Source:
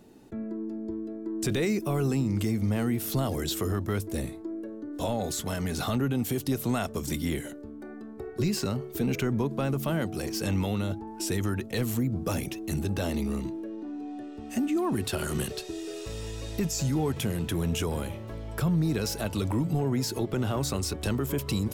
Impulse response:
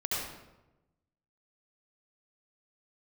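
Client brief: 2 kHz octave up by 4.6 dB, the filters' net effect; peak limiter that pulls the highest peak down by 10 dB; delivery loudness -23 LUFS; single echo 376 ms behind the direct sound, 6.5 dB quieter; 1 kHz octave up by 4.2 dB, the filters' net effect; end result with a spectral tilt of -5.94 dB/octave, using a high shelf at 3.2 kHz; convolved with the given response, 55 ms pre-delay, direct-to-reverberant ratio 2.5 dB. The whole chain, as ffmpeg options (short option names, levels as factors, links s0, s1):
-filter_complex "[0:a]equalizer=f=1000:t=o:g=4.5,equalizer=f=2000:t=o:g=6.5,highshelf=f=3200:g=-5.5,alimiter=level_in=1.26:limit=0.0631:level=0:latency=1,volume=0.794,aecho=1:1:376:0.473,asplit=2[s0][s1];[1:a]atrim=start_sample=2205,adelay=55[s2];[s1][s2]afir=irnorm=-1:irlink=0,volume=0.355[s3];[s0][s3]amix=inputs=2:normalize=0,volume=2.82"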